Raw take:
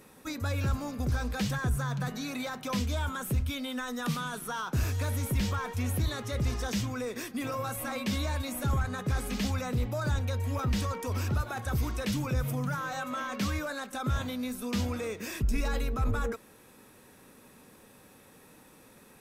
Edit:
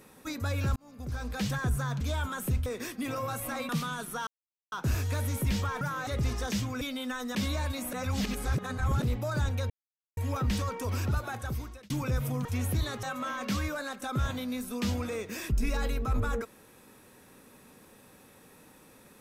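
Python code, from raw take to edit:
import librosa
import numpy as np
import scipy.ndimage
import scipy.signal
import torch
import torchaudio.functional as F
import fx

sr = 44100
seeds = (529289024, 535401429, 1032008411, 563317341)

y = fx.edit(x, sr, fx.fade_in_span(start_s=0.76, length_s=0.74),
    fx.cut(start_s=2.01, length_s=0.83),
    fx.swap(start_s=3.49, length_s=0.54, other_s=7.02, other_length_s=1.03),
    fx.insert_silence(at_s=4.61, length_s=0.45),
    fx.swap(start_s=5.7, length_s=0.58, other_s=12.68, other_length_s=0.26),
    fx.reverse_span(start_s=8.63, length_s=1.09),
    fx.insert_silence(at_s=10.4, length_s=0.47),
    fx.fade_out_span(start_s=11.49, length_s=0.64), tone=tone)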